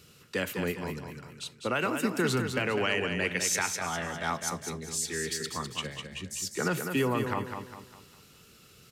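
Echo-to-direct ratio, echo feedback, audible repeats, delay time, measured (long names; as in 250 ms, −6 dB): −5.5 dB, 40%, 4, 202 ms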